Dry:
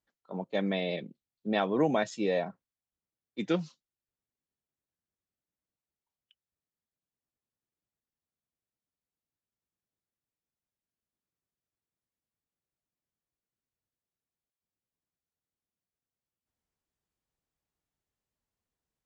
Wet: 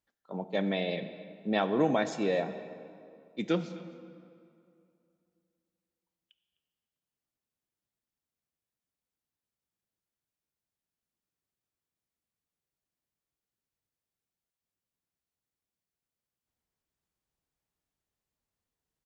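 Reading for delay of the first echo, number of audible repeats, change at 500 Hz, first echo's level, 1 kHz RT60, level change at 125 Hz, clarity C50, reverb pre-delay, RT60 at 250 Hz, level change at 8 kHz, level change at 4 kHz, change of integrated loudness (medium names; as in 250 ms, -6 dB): 256 ms, 1, 0.0 dB, -20.5 dB, 2.5 s, 0.0 dB, 11.0 dB, 24 ms, 2.6 s, no reading, +0.5 dB, 0.0 dB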